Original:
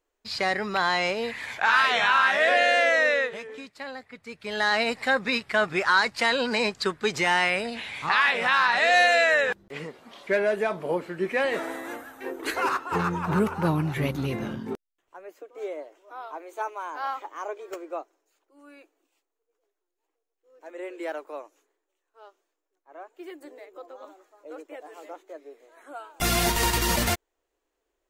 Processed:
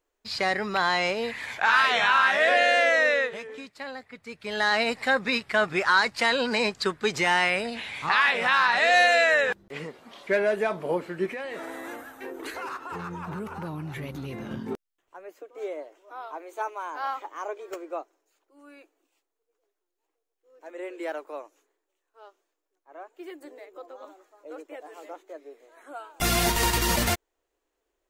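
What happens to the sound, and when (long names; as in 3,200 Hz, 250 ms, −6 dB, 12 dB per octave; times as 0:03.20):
0:11.26–0:14.51: downward compressor 4 to 1, threshold −33 dBFS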